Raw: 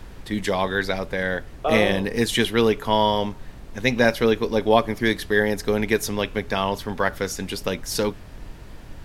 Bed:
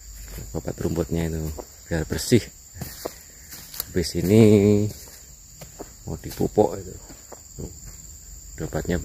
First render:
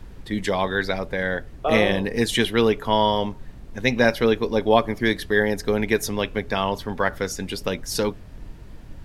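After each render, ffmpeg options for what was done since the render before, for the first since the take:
-af "afftdn=nr=6:nf=-41"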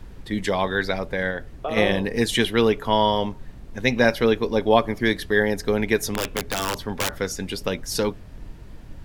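-filter_complex "[0:a]asplit=3[s0][s1][s2];[s0]afade=t=out:st=1.3:d=0.02[s3];[s1]acompressor=threshold=0.0708:ratio=5:attack=3.2:release=140:knee=1:detection=peak,afade=t=in:st=1.3:d=0.02,afade=t=out:st=1.76:d=0.02[s4];[s2]afade=t=in:st=1.76:d=0.02[s5];[s3][s4][s5]amix=inputs=3:normalize=0,asettb=1/sr,asplit=3[s6][s7][s8];[s6]atrim=end=6.144[s9];[s7]atrim=start=6.14:end=7.19,asetpts=PTS-STARTPTS,afade=t=in:d=0.004:c=qsin,afade=t=out:st=1.046:d=0.004:c=qsin,aeval=exprs='(mod(6.31*val(0)+1,2)-1)/6.31':c=same[s10];[s8]atrim=start=7.186[s11];[s9][s10]acrossfade=d=0.004:c1=hsin:c2=qsin[s12];[s12][s11]acrossfade=d=0.004:c1=qsin:c2=hsin"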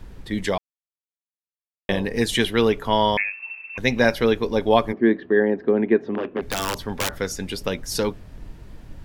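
-filter_complex "[0:a]asettb=1/sr,asplit=3[s0][s1][s2];[s0]atrim=end=3.174[s3];[s1]atrim=start=3.17:end=3.78,asetpts=PTS-STARTPTS,afade=t=in:d=0.004:c=qsin,afade=t=out:st=0.606:d=0.004:c=qsin,lowpass=f=2300:t=q:w=0.5098,lowpass=f=2300:t=q:w=0.6013,lowpass=f=2300:t=q:w=0.9,lowpass=f=2300:t=q:w=2.563,afreqshift=-2700[s4];[s2]atrim=start=3.776[s5];[s3][s4]acrossfade=d=0.004:c1=hsin:c2=qsin[s6];[s6][s5]acrossfade=d=0.004:c1=qsin:c2=hsin,asplit=3[s7][s8][s9];[s7]afade=t=out:st=4.92:d=0.02[s10];[s8]highpass=220,equalizer=f=230:t=q:w=4:g=8,equalizer=f=360:t=q:w=4:g=9,equalizer=f=910:t=q:w=4:g=-3,equalizer=f=1400:t=q:w=4:g=-5,equalizer=f=2200:t=q:w=4:g=-8,lowpass=f=2200:w=0.5412,lowpass=f=2200:w=1.3066,afade=t=in:st=4.92:d=0.02,afade=t=out:st=6.41:d=0.02[s11];[s9]afade=t=in:st=6.41:d=0.02[s12];[s10][s11][s12]amix=inputs=3:normalize=0,asplit=3[s13][s14][s15];[s13]atrim=end=0.58,asetpts=PTS-STARTPTS,afade=t=out:st=0.576:d=0.004:c=hsin[s16];[s14]atrim=start=0.58:end=1.89,asetpts=PTS-STARTPTS,volume=0[s17];[s15]atrim=start=1.89,asetpts=PTS-STARTPTS,afade=t=in:d=0.004:c=hsin[s18];[s16][s17][s18]concat=n=3:v=0:a=1"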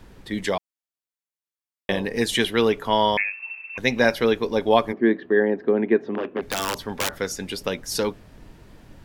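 -af "lowshelf=f=110:g=-10.5"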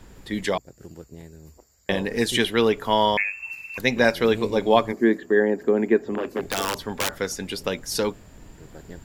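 -filter_complex "[1:a]volume=0.133[s0];[0:a][s0]amix=inputs=2:normalize=0"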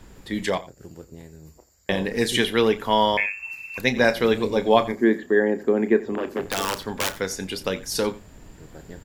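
-filter_complex "[0:a]asplit=2[s0][s1];[s1]adelay=32,volume=0.224[s2];[s0][s2]amix=inputs=2:normalize=0,aecho=1:1:88:0.119"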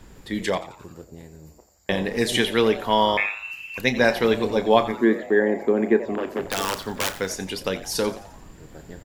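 -filter_complex "[0:a]asplit=6[s0][s1][s2][s3][s4][s5];[s1]adelay=87,afreqshift=140,volume=0.141[s6];[s2]adelay=174,afreqshift=280,volume=0.075[s7];[s3]adelay=261,afreqshift=420,volume=0.0398[s8];[s4]adelay=348,afreqshift=560,volume=0.0211[s9];[s5]adelay=435,afreqshift=700,volume=0.0111[s10];[s0][s6][s7][s8][s9][s10]amix=inputs=6:normalize=0"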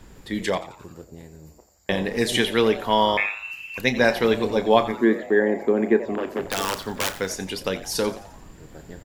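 -af anull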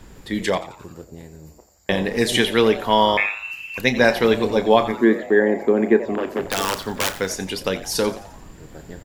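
-af "volume=1.41,alimiter=limit=0.794:level=0:latency=1"

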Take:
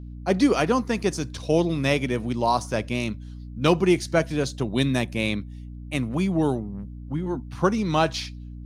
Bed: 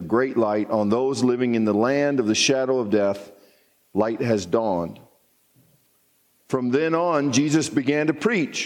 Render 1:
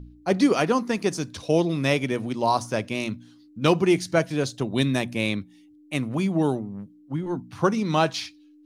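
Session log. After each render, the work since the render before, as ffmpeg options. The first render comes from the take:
-af "bandreject=f=60:t=h:w=4,bandreject=f=120:t=h:w=4,bandreject=f=180:t=h:w=4,bandreject=f=240:t=h:w=4"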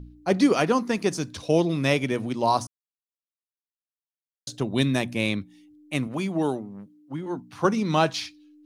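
-filter_complex "[0:a]asettb=1/sr,asplit=3[s0][s1][s2];[s0]atrim=end=6.074[s3];[s1]atrim=start=6.07:end=7.65,asetpts=PTS-STARTPTS,afade=t=in:d=0.004:c=qsin,afade=t=out:st=1.576:d=0.004:c=qsin,highpass=f=270:p=1[s4];[s2]atrim=start=7.646[s5];[s3][s4]acrossfade=d=0.004:c1=hsin:c2=qsin[s6];[s6][s5]acrossfade=d=0.004:c1=qsin:c2=hsin,asplit=3[s7][s8][s9];[s7]atrim=end=2.67,asetpts=PTS-STARTPTS,afade=t=out:st=2.666:d=0.004:c=hsin[s10];[s8]atrim=start=2.67:end=4.47,asetpts=PTS-STARTPTS,volume=0[s11];[s9]atrim=start=4.47,asetpts=PTS-STARTPTS,afade=t=in:d=0.004:c=hsin[s12];[s10][s11][s12]concat=n=3:v=0:a=1"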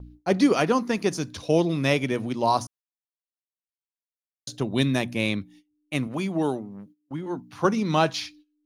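-af "bandreject=f=8000:w=6.7,agate=range=0.1:threshold=0.00355:ratio=16:detection=peak"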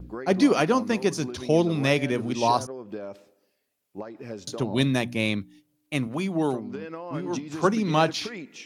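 -filter_complex "[1:a]volume=0.158[s0];[0:a][s0]amix=inputs=2:normalize=0"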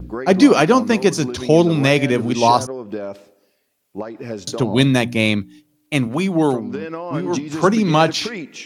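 -af "volume=2.66,alimiter=limit=0.891:level=0:latency=1"

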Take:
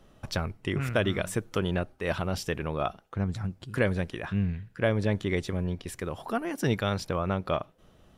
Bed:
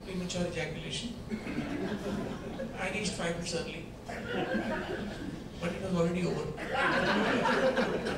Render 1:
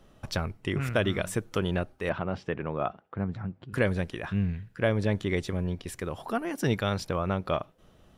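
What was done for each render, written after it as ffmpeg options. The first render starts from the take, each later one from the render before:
-filter_complex "[0:a]asettb=1/sr,asplit=3[s0][s1][s2];[s0]atrim=end=2.094[s3];[s1]atrim=start=2.09:end=3.73,asetpts=PTS-STARTPTS,afade=t=in:d=0.004:c=qsin,afade=t=out:st=1.636:d=0.004:c=qsin,highpass=110,lowpass=2100[s4];[s2]atrim=start=3.726[s5];[s3][s4]acrossfade=d=0.004:c1=hsin:c2=qsin[s6];[s6][s5]acrossfade=d=0.004:c1=qsin:c2=hsin"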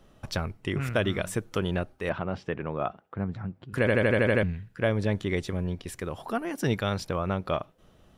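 -filter_complex "[0:a]asplit=9[s0][s1][s2][s3][s4][s5][s6][s7][s8];[s0]atrim=end=3.872[s9];[s1]atrim=start=3.788:end=3.872[s10];[s2]atrim=start=3.788:end=3.872[s11];[s3]atrim=start=3.788:end=3.872[s12];[s4]atrim=start=3.788:end=3.872[s13];[s5]atrim=start=3.788:end=3.872[s14];[s6]atrim=start=3.788:end=3.872[s15];[s7]atrim=start=3.788:end=3.872[s16];[s8]atrim=start=4.428[s17];[s9][s10]acrossfade=d=0.004:c1=hsin:c2=hsin[s18];[s18][s11]acrossfade=d=0.004:c1=hsin:c2=hsin[s19];[s19][s12]acrossfade=d=0.004:c1=hsin:c2=hsin[s20];[s20][s13]acrossfade=d=0.004:c1=hsin:c2=hsin[s21];[s21][s14]acrossfade=d=0.004:c1=hsin:c2=hsin[s22];[s22][s15]acrossfade=d=0.004:c1=hsin:c2=hsin[s23];[s23][s16]acrossfade=d=0.004:c1=hsin:c2=hsin[s24];[s24][s17]acrossfade=d=0.004:c1=hsin:c2=hsin"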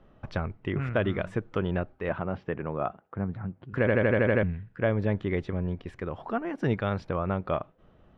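-af "lowpass=2100"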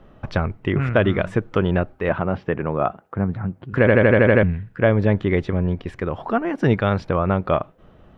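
-af "volume=2.82"

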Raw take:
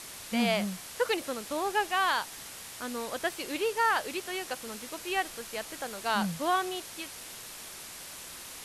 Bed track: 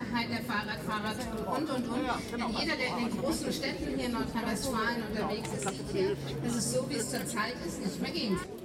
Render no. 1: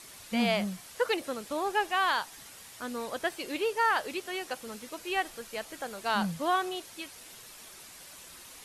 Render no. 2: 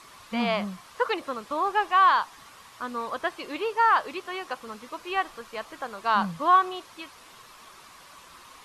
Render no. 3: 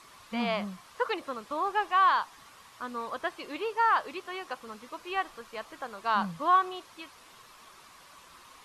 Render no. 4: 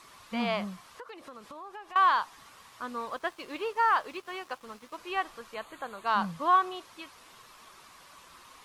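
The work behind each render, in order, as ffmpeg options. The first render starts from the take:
-af "afftdn=nr=7:nf=-45"
-filter_complex "[0:a]acrossover=split=5400[s0][s1];[s1]acompressor=threshold=0.00126:ratio=4:attack=1:release=60[s2];[s0][s2]amix=inputs=2:normalize=0,equalizer=f=1100:w=2.6:g=12.5"
-af "volume=0.631"
-filter_complex "[0:a]asettb=1/sr,asplit=3[s0][s1][s2];[s0]atrim=end=0.884[s3];[s1]atrim=start=0.88:end=1.96,asetpts=PTS-STARTPTS,afade=t=in:d=0.004:c=qsin,afade=t=out:st=1.076:d=0.004:c=qsin,acompressor=threshold=0.00708:ratio=5:attack=3.2:release=140:knee=1:detection=peak[s4];[s2]atrim=start=1.956[s5];[s3][s4]acrossfade=d=0.004:c1=hsin:c2=qsin[s6];[s6][s5]acrossfade=d=0.004:c1=qsin:c2=hsin,asettb=1/sr,asplit=3[s7][s8][s9];[s7]atrim=end=3.054[s10];[s8]atrim=start=3.05:end=4.98,asetpts=PTS-STARTPTS,afade=t=in:d=0.004:c=qsin,afade=t=out:st=1.926:d=0.004:c=qsin,aeval=exprs='sgn(val(0))*max(abs(val(0))-0.00178,0)':c=same[s11];[s9]atrim=start=4.976[s12];[s10][s11]acrossfade=d=0.004:c1=hsin:c2=qsin[s13];[s13][s12]acrossfade=d=0.004:c1=qsin:c2=hsin,asettb=1/sr,asplit=3[s14][s15][s16];[s14]atrim=end=5.544[s17];[s15]atrim=start=5.54:end=6.07,asetpts=PTS-STARTPTS,afade=t=in:d=0.004:c=qsin,afade=t=out:st=0.526:d=0.004:c=qsin,asuperstop=centerf=5400:order=8:qfactor=3[s18];[s16]atrim=start=6.066[s19];[s17][s18]acrossfade=d=0.004:c1=hsin:c2=qsin[s20];[s20][s19]acrossfade=d=0.004:c1=qsin:c2=hsin"

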